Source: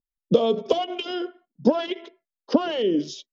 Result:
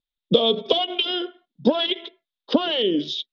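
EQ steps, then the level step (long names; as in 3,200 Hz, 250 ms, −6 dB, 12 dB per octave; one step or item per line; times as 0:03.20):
low-pass with resonance 3,600 Hz, resonance Q 6.5
0.0 dB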